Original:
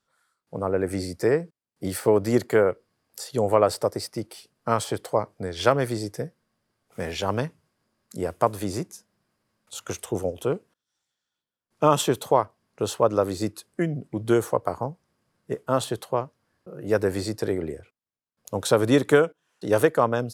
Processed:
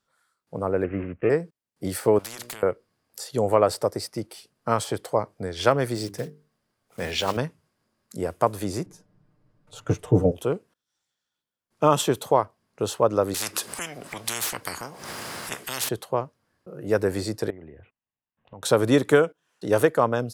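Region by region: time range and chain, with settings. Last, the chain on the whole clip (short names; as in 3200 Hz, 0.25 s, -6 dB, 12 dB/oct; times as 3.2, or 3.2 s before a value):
0.84–1.3 switching dead time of 0.19 ms + steep low-pass 2700 Hz 72 dB/oct + bell 880 Hz -10 dB 0.39 oct
2.19–2.63 notches 60/120/180/240/300/360/420/480/540/600 Hz + compressor 2.5:1, threshold -30 dBFS + spectral compressor 4:1
5.95–7.37 block floating point 5-bit + dynamic EQ 3300 Hz, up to +7 dB, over -46 dBFS, Q 0.81 + notches 50/100/150/200/250/300/350/400/450 Hz
8.86–10.32 tilt -4 dB/oct + comb 6.7 ms, depth 75%
13.34–15.89 HPF 340 Hz 6 dB/oct + upward compressor, threshold -33 dBFS + spectral compressor 10:1
17.5–18.63 steep low-pass 3200 Hz 48 dB/oct + comb 1.1 ms, depth 35% + compressor 3:1, threshold -44 dBFS
whole clip: dry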